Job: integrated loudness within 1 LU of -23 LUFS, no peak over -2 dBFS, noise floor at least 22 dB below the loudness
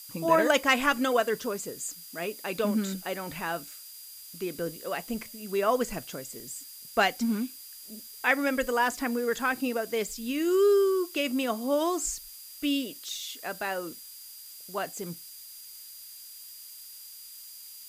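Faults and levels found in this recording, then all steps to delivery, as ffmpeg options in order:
steady tone 4800 Hz; tone level -51 dBFS; noise floor -46 dBFS; noise floor target -51 dBFS; loudness -29.0 LUFS; peak -10.5 dBFS; loudness target -23.0 LUFS
-> -af "bandreject=f=4.8k:w=30"
-af "afftdn=nr=6:nf=-46"
-af "volume=6dB"

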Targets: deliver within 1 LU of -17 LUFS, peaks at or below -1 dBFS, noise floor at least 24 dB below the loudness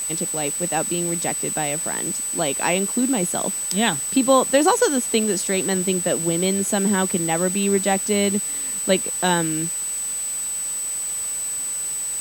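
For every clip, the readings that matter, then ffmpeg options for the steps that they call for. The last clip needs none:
steady tone 8000 Hz; tone level -24 dBFS; noise floor -27 dBFS; noise floor target -45 dBFS; loudness -20.5 LUFS; peak -3.0 dBFS; loudness target -17.0 LUFS
-> -af "bandreject=f=8k:w=30"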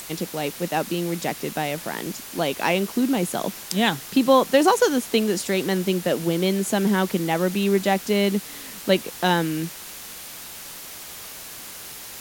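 steady tone none; noise floor -39 dBFS; noise floor target -47 dBFS
-> -af "afftdn=nr=8:nf=-39"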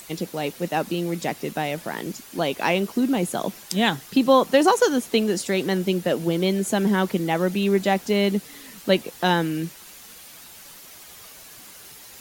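noise floor -45 dBFS; noise floor target -47 dBFS
-> -af "afftdn=nr=6:nf=-45"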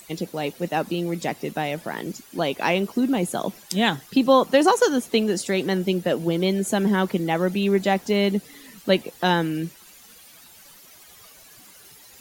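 noise floor -49 dBFS; loudness -23.0 LUFS; peak -4.5 dBFS; loudness target -17.0 LUFS
-> -af "volume=6dB,alimiter=limit=-1dB:level=0:latency=1"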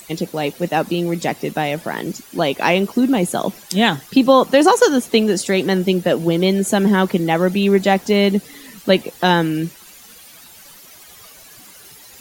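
loudness -17.0 LUFS; peak -1.0 dBFS; noise floor -43 dBFS

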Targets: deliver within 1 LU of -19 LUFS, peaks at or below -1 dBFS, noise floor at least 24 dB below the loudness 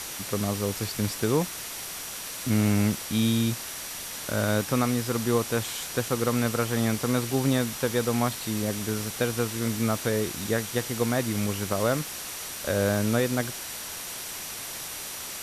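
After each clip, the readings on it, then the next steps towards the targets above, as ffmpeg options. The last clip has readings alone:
steady tone 5800 Hz; tone level -46 dBFS; noise floor -37 dBFS; noise floor target -52 dBFS; loudness -27.5 LUFS; peak -11.5 dBFS; loudness target -19.0 LUFS
-> -af "bandreject=f=5.8k:w=30"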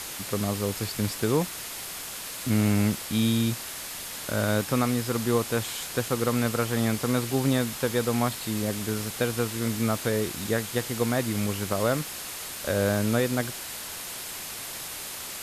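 steady tone none; noise floor -37 dBFS; noise floor target -52 dBFS
-> -af "afftdn=nr=15:nf=-37"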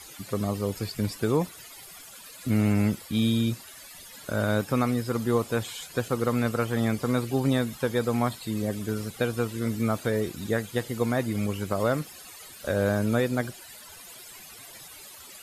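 noise floor -46 dBFS; noise floor target -52 dBFS
-> -af "afftdn=nr=6:nf=-46"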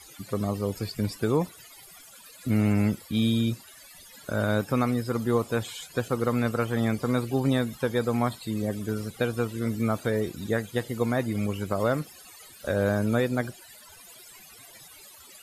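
noise floor -50 dBFS; noise floor target -52 dBFS
-> -af "afftdn=nr=6:nf=-50"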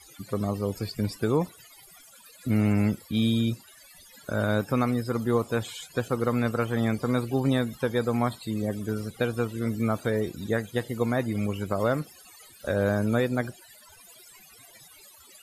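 noise floor -53 dBFS; loudness -27.5 LUFS; peak -12.5 dBFS; loudness target -19.0 LUFS
-> -af "volume=8.5dB"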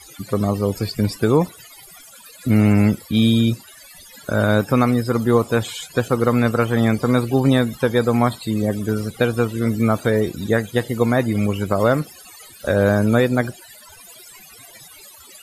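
loudness -19.0 LUFS; peak -4.0 dBFS; noise floor -44 dBFS

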